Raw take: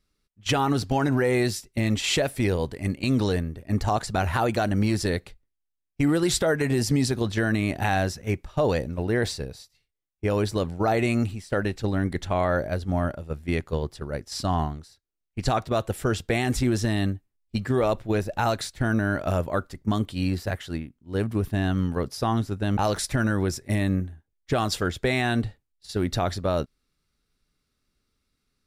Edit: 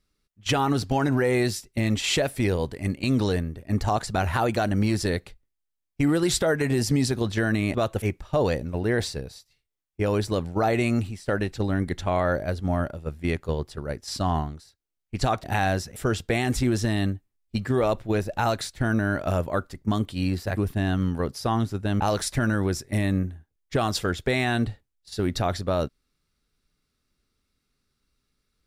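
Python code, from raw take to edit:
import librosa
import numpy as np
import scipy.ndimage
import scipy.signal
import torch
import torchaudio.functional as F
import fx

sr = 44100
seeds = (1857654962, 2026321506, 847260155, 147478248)

y = fx.edit(x, sr, fx.swap(start_s=7.74, length_s=0.52, other_s=15.68, other_length_s=0.28),
    fx.cut(start_s=20.57, length_s=0.77), tone=tone)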